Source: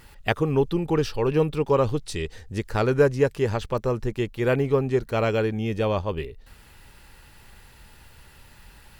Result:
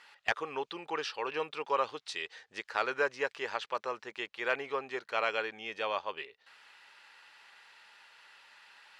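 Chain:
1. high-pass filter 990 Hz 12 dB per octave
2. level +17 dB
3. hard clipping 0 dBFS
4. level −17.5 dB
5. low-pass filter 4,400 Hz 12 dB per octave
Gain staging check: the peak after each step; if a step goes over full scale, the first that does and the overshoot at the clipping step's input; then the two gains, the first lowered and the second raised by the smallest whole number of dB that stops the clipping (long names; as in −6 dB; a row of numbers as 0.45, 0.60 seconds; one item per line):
−8.5, +8.5, 0.0, −17.5, −17.0 dBFS
step 2, 8.5 dB
step 2 +8 dB, step 4 −8.5 dB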